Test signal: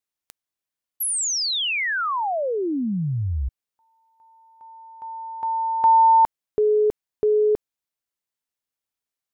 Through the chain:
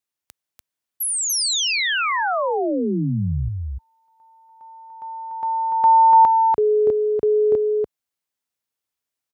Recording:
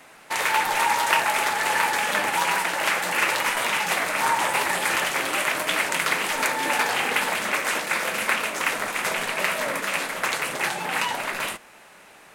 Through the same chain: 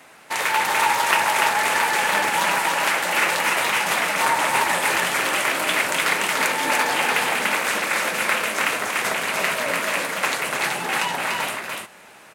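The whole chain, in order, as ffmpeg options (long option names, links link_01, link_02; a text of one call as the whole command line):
ffmpeg -i in.wav -af "highpass=57,aecho=1:1:292:0.708,volume=1dB" out.wav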